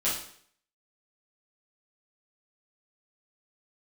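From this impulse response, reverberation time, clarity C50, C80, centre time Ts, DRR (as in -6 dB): 0.60 s, 4.0 dB, 8.5 dB, 40 ms, -10.0 dB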